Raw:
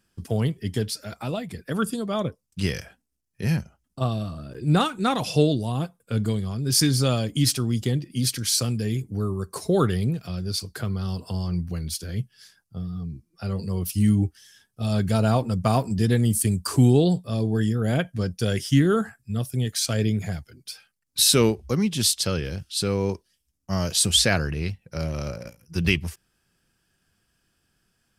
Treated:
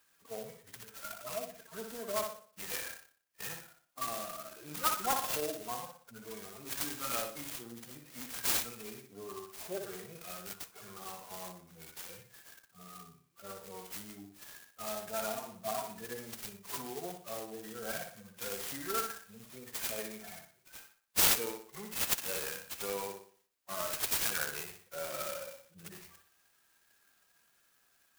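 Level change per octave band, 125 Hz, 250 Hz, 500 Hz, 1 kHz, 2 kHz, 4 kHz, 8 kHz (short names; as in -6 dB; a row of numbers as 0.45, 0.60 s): -32.0, -24.5, -14.0, -8.0, -8.5, -14.0, -10.0 dB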